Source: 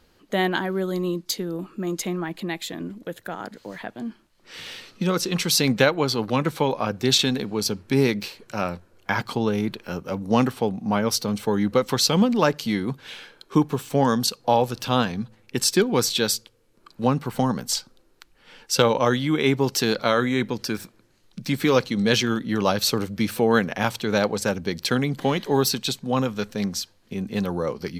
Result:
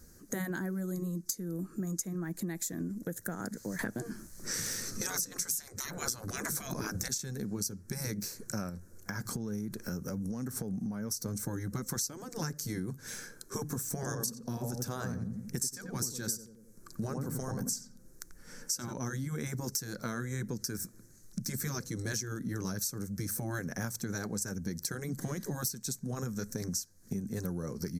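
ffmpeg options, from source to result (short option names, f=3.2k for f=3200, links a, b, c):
-filter_complex "[0:a]asettb=1/sr,asplit=3[a][b][c];[a]atrim=end=8.694[d];[b]atrim=start=8.69:end=11.26,asetpts=PTS-STARTPTS,afade=t=in:d=0.004:c=qsin,afade=t=out:st=2.566:d=0.004:c=qsin,acompressor=threshold=-31dB:ratio=6:attack=3.2:release=140:knee=1:detection=peak[e];[c]atrim=start=11.256[f];[d][e]acrossfade=d=0.004:c1=hsin:c2=qsin[g];[g][f]acrossfade=d=0.004:c1=qsin:c2=hsin,asplit=3[h][i][j];[h]afade=t=out:st=14.01:d=0.02[k];[i]asplit=2[l][m];[m]adelay=89,lowpass=f=970:p=1,volume=-4dB,asplit=2[n][o];[o]adelay=89,lowpass=f=970:p=1,volume=0.4,asplit=2[p][q];[q]adelay=89,lowpass=f=970:p=1,volume=0.4,asplit=2[r][s];[s]adelay=89,lowpass=f=970:p=1,volume=0.4,asplit=2[t][u];[u]adelay=89,lowpass=f=970:p=1,volume=0.4[v];[l][n][p][r][t][v]amix=inputs=6:normalize=0,afade=t=in:st=14.01:d=0.02,afade=t=out:st=18.92:d=0.02[w];[j]afade=t=in:st=18.92:d=0.02[x];[k][w][x]amix=inputs=3:normalize=0,asplit=3[y][z][aa];[y]atrim=end=3.792[ab];[z]atrim=start=3.788:end=7.082,asetpts=PTS-STARTPTS,volume=11.5dB[ac];[aa]atrim=start=7.078[ad];[ab][ac]acrossfade=d=0.004:c1=hsin:c2=hsin[ae];[ae][ad]acrossfade=d=0.004:c1=hsin:c2=hsin,afftfilt=real='re*lt(hypot(re,im),0.501)':imag='im*lt(hypot(re,im),0.501)':win_size=1024:overlap=0.75,firequalizer=gain_entry='entry(190,0);entry(300,-5);entry(870,-16);entry(1600,-6);entry(2900,-27);entry(5900,6)':delay=0.05:min_phase=1,acompressor=threshold=-38dB:ratio=10,volume=5.5dB"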